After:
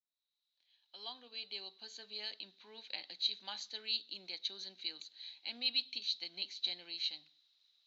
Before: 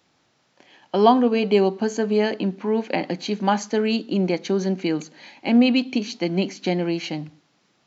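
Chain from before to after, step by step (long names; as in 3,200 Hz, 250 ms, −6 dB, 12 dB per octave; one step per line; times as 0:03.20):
fade in at the beginning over 2.34 s
resonant band-pass 3,900 Hz, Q 14
level +6.5 dB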